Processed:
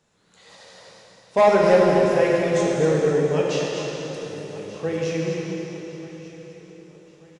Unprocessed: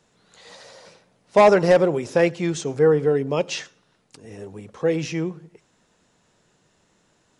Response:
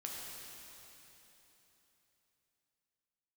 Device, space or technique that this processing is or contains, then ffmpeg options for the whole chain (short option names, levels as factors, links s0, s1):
cave: -filter_complex "[0:a]aecho=1:1:242:0.376,aecho=1:1:1188|2376|3564:0.133|0.0533|0.0213[s0];[1:a]atrim=start_sample=2205[s1];[s0][s1]afir=irnorm=-1:irlink=0"